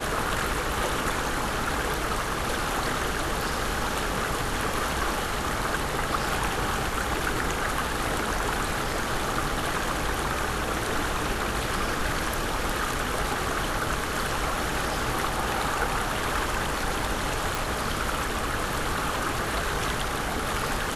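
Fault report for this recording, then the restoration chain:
17.55 s: pop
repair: de-click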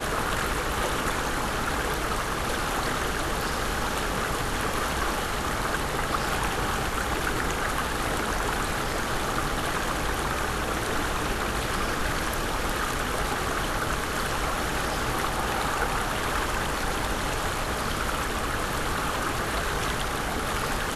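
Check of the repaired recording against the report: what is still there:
nothing left

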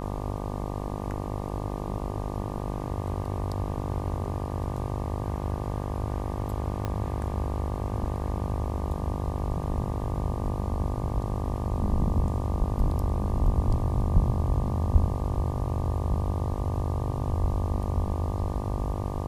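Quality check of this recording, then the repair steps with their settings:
buzz 50 Hz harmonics 24 -33 dBFS
6.85 s: pop -17 dBFS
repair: de-click; de-hum 50 Hz, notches 24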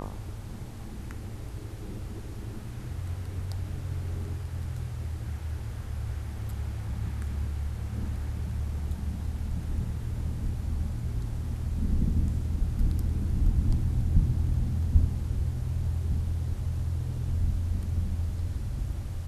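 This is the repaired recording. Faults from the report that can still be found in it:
6.85 s: pop

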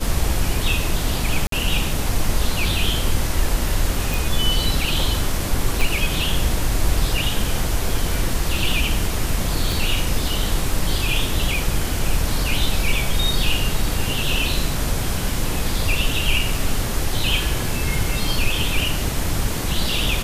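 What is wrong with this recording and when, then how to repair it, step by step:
1.47–1.52 s: dropout 53 ms
4.14 s: pop
5.81 s: pop
9.72 s: pop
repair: de-click; interpolate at 1.47 s, 53 ms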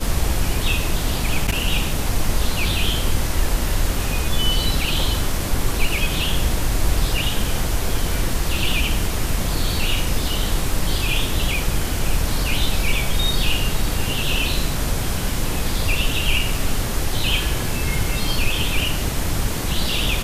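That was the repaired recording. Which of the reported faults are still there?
5.81 s: pop

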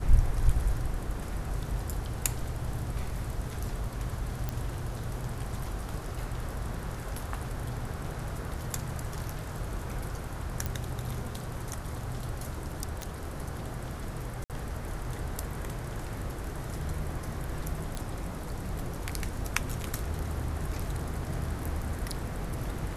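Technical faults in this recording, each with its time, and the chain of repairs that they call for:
4.49 s: pop -18 dBFS
10.66 s: pop
13.02 s: pop -20 dBFS
14.44–14.50 s: dropout 58 ms
17.95 s: pop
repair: de-click; interpolate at 14.44 s, 58 ms

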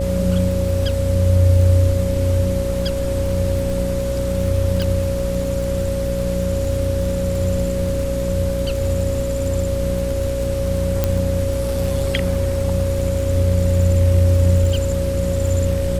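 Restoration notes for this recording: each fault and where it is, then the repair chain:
buzz 60 Hz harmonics 10 -24 dBFS
crackle 21 per s -24 dBFS
whine 550 Hz -22 dBFS
4.82 s: pop
11.04 s: pop -4 dBFS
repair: de-click; de-hum 60 Hz, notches 10; band-stop 550 Hz, Q 30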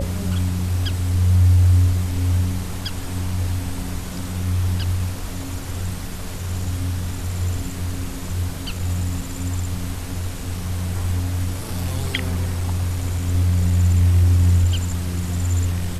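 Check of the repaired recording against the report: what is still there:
nothing left

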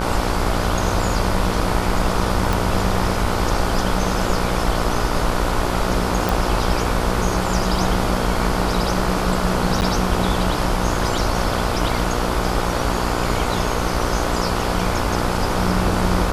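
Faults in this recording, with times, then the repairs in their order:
buzz 60 Hz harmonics 25 -24 dBFS
2.53 s: pop
6.29 s: pop
9.81–9.82 s: dropout 9.1 ms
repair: de-click; de-hum 60 Hz, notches 25; interpolate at 9.81 s, 9.1 ms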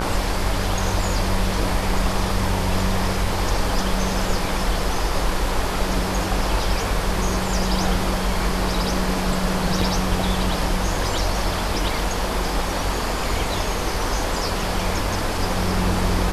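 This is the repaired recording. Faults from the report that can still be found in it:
nothing left

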